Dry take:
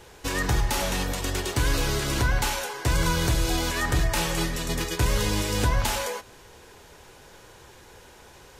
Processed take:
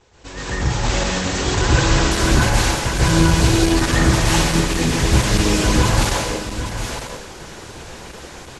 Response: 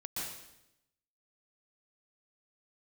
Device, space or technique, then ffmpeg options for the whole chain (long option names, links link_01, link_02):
speakerphone in a meeting room: -filter_complex "[0:a]asplit=3[link_01][link_02][link_03];[link_01]afade=type=out:start_time=1.47:duration=0.02[link_04];[link_02]equalizer=frequency=940:width=1.4:gain=4,afade=type=in:start_time=1.47:duration=0.02,afade=type=out:start_time=2.14:duration=0.02[link_05];[link_03]afade=type=in:start_time=2.14:duration=0.02[link_06];[link_04][link_05][link_06]amix=inputs=3:normalize=0,aecho=1:1:809:0.299[link_07];[1:a]atrim=start_sample=2205[link_08];[link_07][link_08]afir=irnorm=-1:irlink=0,asplit=2[link_09][link_10];[link_10]adelay=120,highpass=300,lowpass=3400,asoftclip=type=hard:threshold=-18.5dB,volume=-23dB[link_11];[link_09][link_11]amix=inputs=2:normalize=0,dynaudnorm=framelen=100:gausssize=17:maxgain=13dB" -ar 48000 -c:a libopus -b:a 12k